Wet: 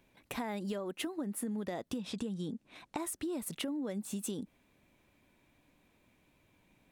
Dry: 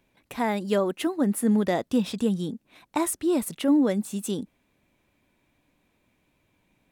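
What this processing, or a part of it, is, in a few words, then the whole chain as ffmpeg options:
serial compression, peaks first: -filter_complex "[0:a]asettb=1/sr,asplit=3[a][b][c];[a]atrim=end=1.994[d];[b]atrim=start=1.99:end=2.98,asetpts=PTS-STARTPTS,afade=t=in:d=0.004:c=qsin,afade=t=out:st=0.986:d=0.004:c=qsin,lowpass=9.3k[e];[c]atrim=start=2.976[f];[d][e]acrossfade=d=0.004:c1=hsin:c2=qsin[g];[g][f]acrossfade=d=0.004:c1=qsin:c2=hsin,acompressor=threshold=-29dB:ratio=6,acompressor=threshold=-36dB:ratio=3"

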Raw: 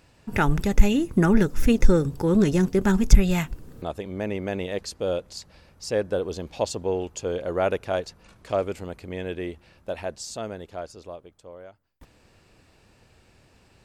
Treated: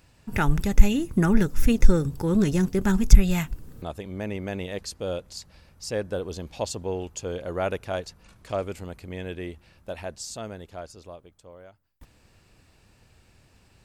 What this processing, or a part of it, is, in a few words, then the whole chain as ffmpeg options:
smiley-face EQ: -af "lowshelf=f=150:g=4,equalizer=f=450:t=o:w=1.6:g=-3,highshelf=f=9.1k:g=6.5,volume=-2dB"

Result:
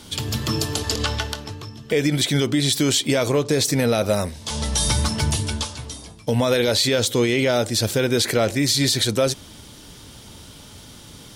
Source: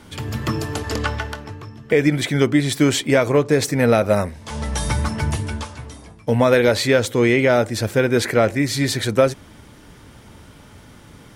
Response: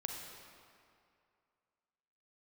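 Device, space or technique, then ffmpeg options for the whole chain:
over-bright horn tweeter: -af "highshelf=f=2.7k:t=q:w=1.5:g=8.5,alimiter=limit=-9.5dB:level=0:latency=1:release=57"

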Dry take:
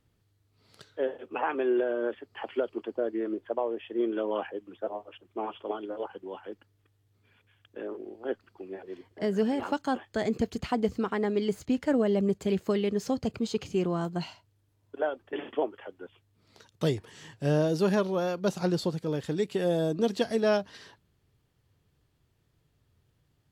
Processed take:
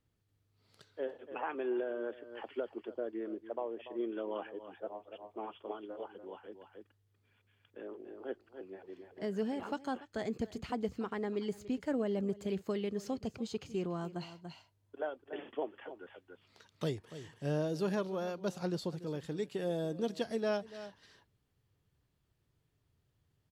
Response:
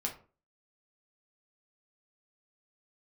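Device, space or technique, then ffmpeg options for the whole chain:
ducked delay: -filter_complex "[0:a]asettb=1/sr,asplit=3[a][b][c];[a]atrim=end=15.774[d];[b]atrim=start=15.77:end=16.84,asetpts=PTS-STARTPTS,afade=t=in:d=0.004:c=qsin,afade=t=out:st=1.066:d=0.004:c=qsin,equalizer=f=2k:t=o:w=2.5:g=5.5[e];[c]atrim=start=16.836[f];[d][e]acrossfade=d=0.004:c1=hsin:c2=qsin[g];[g][f]acrossfade=d=0.004:c1=qsin:c2=hsin,asplit=3[h][i][j];[i]adelay=288,volume=-3.5dB[k];[j]apad=whole_len=1049630[l];[k][l]sidechaincompress=threshold=-42dB:ratio=6:attack=25:release=372[m];[h][m]amix=inputs=2:normalize=0,volume=-8.5dB"

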